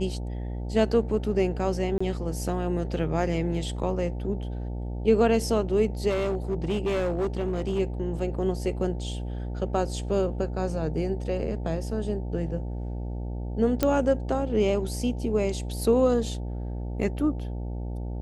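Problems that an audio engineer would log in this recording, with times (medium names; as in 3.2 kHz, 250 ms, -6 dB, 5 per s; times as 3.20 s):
buzz 60 Hz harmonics 15 -32 dBFS
1.98–2.00 s: dropout 25 ms
6.09–7.80 s: clipped -22 dBFS
13.83 s: pop -9 dBFS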